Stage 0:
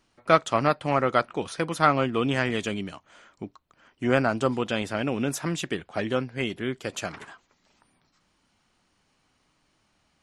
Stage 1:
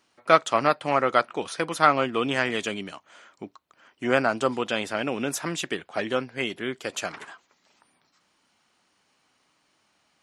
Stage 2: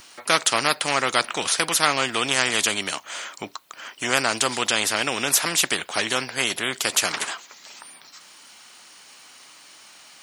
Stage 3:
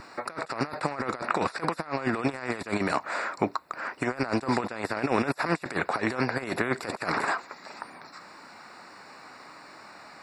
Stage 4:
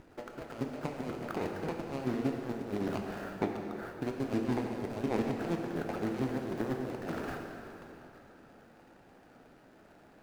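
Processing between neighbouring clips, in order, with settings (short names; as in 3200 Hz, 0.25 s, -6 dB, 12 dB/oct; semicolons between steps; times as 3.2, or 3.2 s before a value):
HPF 380 Hz 6 dB/oct; gain +2.5 dB
tilt +3 dB/oct; spectral compressor 2:1; gain -1 dB
negative-ratio compressor -28 dBFS, ratio -0.5; running mean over 14 samples; gain +4 dB
median filter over 41 samples; plate-style reverb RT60 3.1 s, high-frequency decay 0.8×, DRR 1.5 dB; gain -5 dB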